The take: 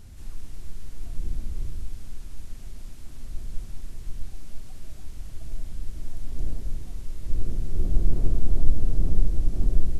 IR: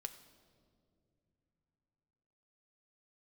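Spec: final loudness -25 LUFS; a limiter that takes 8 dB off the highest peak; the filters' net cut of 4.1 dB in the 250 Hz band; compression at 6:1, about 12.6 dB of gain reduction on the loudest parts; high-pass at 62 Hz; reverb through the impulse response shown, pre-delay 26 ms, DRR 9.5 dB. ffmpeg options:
-filter_complex "[0:a]highpass=62,equalizer=f=250:t=o:g=-6,acompressor=threshold=0.00891:ratio=6,alimiter=level_in=7.5:limit=0.0631:level=0:latency=1,volume=0.133,asplit=2[s0][s1];[1:a]atrim=start_sample=2205,adelay=26[s2];[s1][s2]afir=irnorm=-1:irlink=0,volume=0.501[s3];[s0][s3]amix=inputs=2:normalize=0,volume=21.1"

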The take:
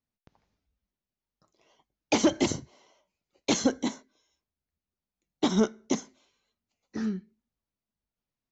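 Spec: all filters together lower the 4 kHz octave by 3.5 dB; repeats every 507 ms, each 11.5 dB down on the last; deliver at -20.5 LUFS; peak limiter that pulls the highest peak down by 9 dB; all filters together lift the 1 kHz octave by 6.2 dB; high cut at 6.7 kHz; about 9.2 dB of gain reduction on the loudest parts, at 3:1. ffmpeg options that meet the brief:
-af "lowpass=6700,equalizer=f=1000:t=o:g=8,equalizer=f=4000:t=o:g=-4.5,acompressor=threshold=0.0316:ratio=3,alimiter=level_in=1.12:limit=0.0631:level=0:latency=1,volume=0.891,aecho=1:1:507|1014|1521:0.266|0.0718|0.0194,volume=9.44"

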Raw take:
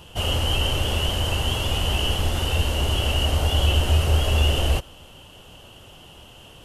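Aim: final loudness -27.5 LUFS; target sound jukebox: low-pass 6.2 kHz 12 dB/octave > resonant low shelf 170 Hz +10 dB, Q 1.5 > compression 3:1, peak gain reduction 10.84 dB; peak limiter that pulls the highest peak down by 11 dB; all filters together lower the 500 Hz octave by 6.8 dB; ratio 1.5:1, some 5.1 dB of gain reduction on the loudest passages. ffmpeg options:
-af "equalizer=f=500:t=o:g=-7.5,acompressor=threshold=0.0355:ratio=1.5,alimiter=level_in=1.12:limit=0.0631:level=0:latency=1,volume=0.891,lowpass=6200,lowshelf=f=170:t=q:w=1.5:g=10,acompressor=threshold=0.0251:ratio=3,volume=2.37"

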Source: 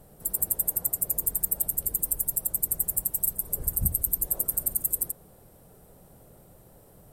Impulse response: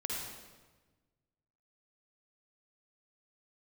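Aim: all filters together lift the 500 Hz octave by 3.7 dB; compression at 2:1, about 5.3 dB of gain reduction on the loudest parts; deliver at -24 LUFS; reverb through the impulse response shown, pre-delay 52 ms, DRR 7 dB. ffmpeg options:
-filter_complex "[0:a]equalizer=f=500:t=o:g=4.5,acompressor=threshold=0.0316:ratio=2,asplit=2[s0][s1];[1:a]atrim=start_sample=2205,adelay=52[s2];[s1][s2]afir=irnorm=-1:irlink=0,volume=0.316[s3];[s0][s3]amix=inputs=2:normalize=0,volume=2"

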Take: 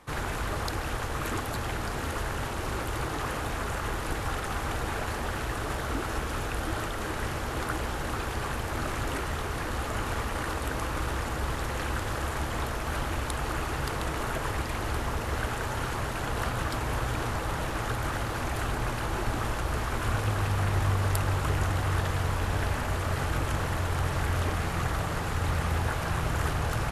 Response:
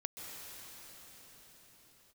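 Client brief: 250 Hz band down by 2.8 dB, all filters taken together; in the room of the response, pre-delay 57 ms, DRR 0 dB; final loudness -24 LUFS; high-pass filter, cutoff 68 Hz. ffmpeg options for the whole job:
-filter_complex "[0:a]highpass=68,equalizer=f=250:t=o:g=-4,asplit=2[s0][s1];[1:a]atrim=start_sample=2205,adelay=57[s2];[s1][s2]afir=irnorm=-1:irlink=0,volume=1[s3];[s0][s3]amix=inputs=2:normalize=0,volume=1.78"

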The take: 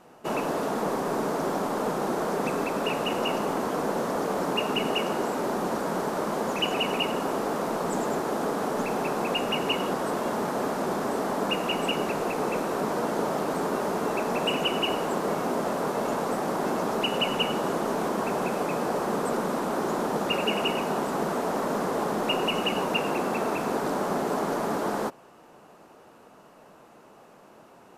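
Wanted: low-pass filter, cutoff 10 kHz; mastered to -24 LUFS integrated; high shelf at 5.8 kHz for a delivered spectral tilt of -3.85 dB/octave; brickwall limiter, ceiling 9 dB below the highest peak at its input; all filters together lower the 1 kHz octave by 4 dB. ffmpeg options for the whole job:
-af "lowpass=10000,equalizer=f=1000:t=o:g=-5,highshelf=f=5800:g=-8.5,volume=2.37,alimiter=limit=0.178:level=0:latency=1"

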